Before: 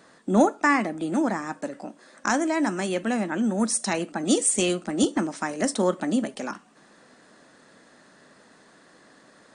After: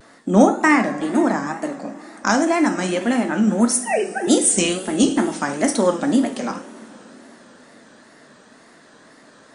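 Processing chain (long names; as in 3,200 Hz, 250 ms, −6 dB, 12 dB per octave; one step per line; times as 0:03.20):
0:03.83–0:04.27: three sine waves on the formant tracks
coupled-rooms reverb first 0.44 s, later 4.2 s, from −18 dB, DRR 5 dB
tape wow and flutter 110 cents
level +4.5 dB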